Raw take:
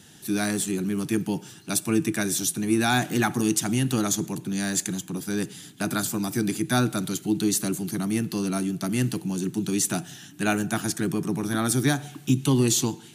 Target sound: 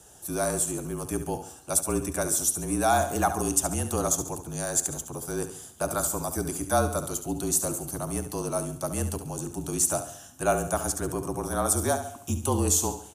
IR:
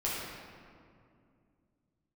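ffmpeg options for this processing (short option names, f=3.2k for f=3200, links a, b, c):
-af "afreqshift=-37,equalizer=f=125:t=o:w=1:g=-8,equalizer=f=250:t=o:w=1:g=-11,equalizer=f=500:t=o:w=1:g=9,equalizer=f=1k:t=o:w=1:g=5,equalizer=f=2k:t=o:w=1:g=-11,equalizer=f=4k:t=o:w=1:g=-10,equalizer=f=8k:t=o:w=1:g=5,aecho=1:1:70|140|210|280|350:0.299|0.131|0.0578|0.0254|0.0112"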